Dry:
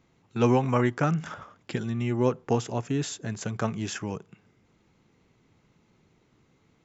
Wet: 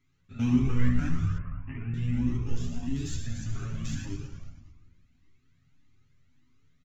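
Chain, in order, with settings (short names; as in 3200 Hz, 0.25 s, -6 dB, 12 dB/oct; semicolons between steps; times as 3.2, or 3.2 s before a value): stepped spectrum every 0.1 s; band shelf 640 Hz -12 dB; notches 50/100/150 Hz; in parallel at -4 dB: backlash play -30 dBFS; on the sum: frequency-shifting echo 0.11 s, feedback 58%, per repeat -64 Hz, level -7 dB; chorus voices 6, 0.47 Hz, delay 10 ms, depth 2.6 ms; on a send at -2 dB: reverb RT60 0.80 s, pre-delay 7 ms; on the sum: dynamic EQ 820 Hz, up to -6 dB, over -42 dBFS, Q 0.85; 1.38–1.94 steep low-pass 2800 Hz 96 dB/oct; cascading flanger rising 1.7 Hz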